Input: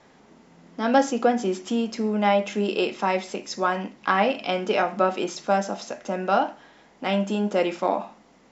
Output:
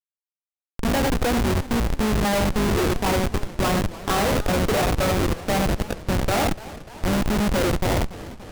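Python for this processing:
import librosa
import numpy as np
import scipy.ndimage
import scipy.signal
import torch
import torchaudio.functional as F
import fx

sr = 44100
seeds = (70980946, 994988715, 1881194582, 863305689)

p1 = fx.octave_divider(x, sr, octaves=2, level_db=-6.0)
p2 = fx.high_shelf(p1, sr, hz=2400.0, db=-8.0)
p3 = fx.rider(p2, sr, range_db=4, speed_s=2.0)
p4 = p3 + fx.echo_single(p3, sr, ms=88, db=-7.0, dry=0)
p5 = fx.schmitt(p4, sr, flips_db=-24.5)
p6 = fx.echo_warbled(p5, sr, ms=290, feedback_pct=70, rate_hz=2.8, cents=196, wet_db=-17.5)
y = F.gain(torch.from_numpy(p6), 4.5).numpy()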